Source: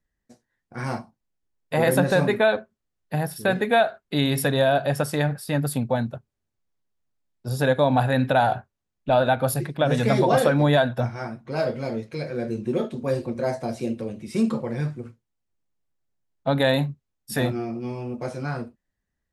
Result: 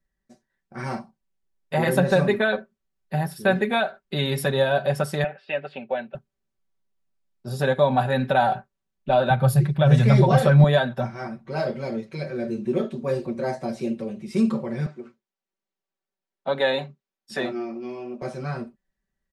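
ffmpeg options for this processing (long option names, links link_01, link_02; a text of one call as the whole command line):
ffmpeg -i in.wav -filter_complex "[0:a]asettb=1/sr,asplit=3[link_01][link_02][link_03];[link_01]atrim=end=5.244[link_04];[link_02]atrim=start=5.24:end=6.15,asetpts=PTS-STARTPTS,afade=type=in:duration=0.004:curve=qsin,afade=type=out:start_time=0.906:duration=0.004:curve=qsin,highpass=470,equalizer=frequency=540:width_type=q:width=4:gain=3,equalizer=frequency=1100:width_type=q:width=4:gain=-9,equalizer=frequency=2700:width_type=q:width=4:gain=10,lowpass=frequency=3100:width=0.5412,lowpass=frequency=3100:width=1.3066[link_05];[link_03]atrim=start=6.146[link_06];[link_04][link_05]acrossfade=duration=0.004:curve1=hsin:curve2=qsin[link_07];[link_07][link_06]acrossfade=duration=0.004:curve1=qsin:curve2=hsin,asettb=1/sr,asplit=3[link_08][link_09][link_10];[link_08]atrim=end=9.304[link_11];[link_09]atrim=start=9.3:end=10.64,asetpts=PTS-STARTPTS,afade=type=in:duration=0.004:curve=qsin,afade=type=out:start_time=1.336:duration=0.004:curve=qsin,lowshelf=frequency=180:width_type=q:width=1.5:gain=10.5[link_12];[link_10]atrim=start=10.636[link_13];[link_11][link_12]acrossfade=duration=0.004:curve1=hsin:curve2=qsin[link_14];[link_14][link_13]acrossfade=duration=0.004:curve1=qsin:curve2=hsin,asettb=1/sr,asplit=3[link_15][link_16][link_17];[link_15]atrim=end=14.864[link_18];[link_16]atrim=start=14.86:end=18.22,asetpts=PTS-STARTPTS,afade=type=in:duration=0.004:curve=qsin,afade=type=out:start_time=3.356:duration=0.004:curve=qsin,acrossover=split=230 7900:gain=0.1 1 0.0708[link_19][link_20][link_21];[link_19][link_20][link_21]amix=inputs=3:normalize=0[link_22];[link_17]atrim=start=18.216[link_23];[link_18][link_22]acrossfade=duration=0.004:curve1=hsin:curve2=qsin[link_24];[link_24][link_23]acrossfade=duration=0.004:curve1=qsin:curve2=hsin,highshelf=frequency=9200:gain=-8.5,aecho=1:1:5.2:0.72,volume=-2dB" out.wav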